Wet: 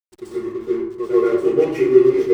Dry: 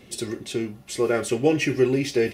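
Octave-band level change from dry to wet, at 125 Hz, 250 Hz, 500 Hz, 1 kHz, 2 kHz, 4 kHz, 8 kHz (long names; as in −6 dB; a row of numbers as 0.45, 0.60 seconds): −6.0 dB, +5.0 dB, +8.0 dB, +1.5 dB, −5.0 dB, below −10 dB, below −10 dB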